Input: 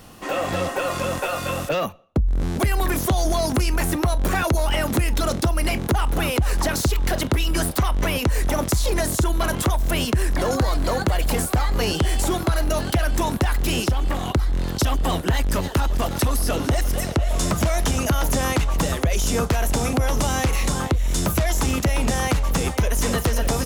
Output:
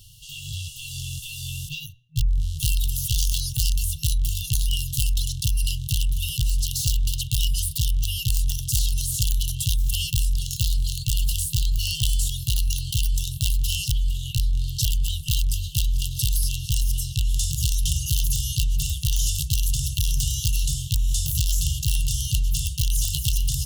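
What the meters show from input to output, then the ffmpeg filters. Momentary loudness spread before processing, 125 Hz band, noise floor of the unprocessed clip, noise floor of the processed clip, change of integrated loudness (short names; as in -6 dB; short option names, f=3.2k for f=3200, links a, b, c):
2 LU, -1.5 dB, -29 dBFS, -37 dBFS, -2.0 dB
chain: -af "bandreject=f=119.4:t=h:w=4,bandreject=f=238.8:t=h:w=4,bandreject=f=358.2:t=h:w=4,bandreject=f=477.6:t=h:w=4,bandreject=f=597:t=h:w=4,bandreject=f=716.4:t=h:w=4,bandreject=f=835.8:t=h:w=4,aeval=exprs='(mod(5.01*val(0)+1,2)-1)/5.01':c=same,afftfilt=real='re*(1-between(b*sr/4096,160,2700))':imag='im*(1-between(b*sr/4096,160,2700))':win_size=4096:overlap=0.75"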